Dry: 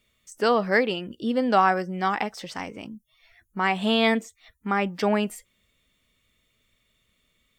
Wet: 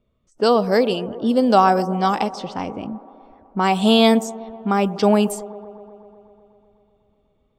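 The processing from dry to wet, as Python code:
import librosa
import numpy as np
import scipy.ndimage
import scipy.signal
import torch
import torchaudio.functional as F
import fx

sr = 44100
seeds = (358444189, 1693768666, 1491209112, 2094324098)

p1 = fx.high_shelf(x, sr, hz=6300.0, db=8.0)
p2 = fx.env_lowpass(p1, sr, base_hz=1200.0, full_db=-20.5)
p3 = fx.echo_wet_bandpass(p2, sr, ms=125, feedback_pct=76, hz=540.0, wet_db=-16)
p4 = fx.rider(p3, sr, range_db=4, speed_s=2.0)
p5 = p3 + (p4 * 10.0 ** (2.5 / 20.0))
y = fx.peak_eq(p5, sr, hz=1900.0, db=-14.0, octaves=0.94)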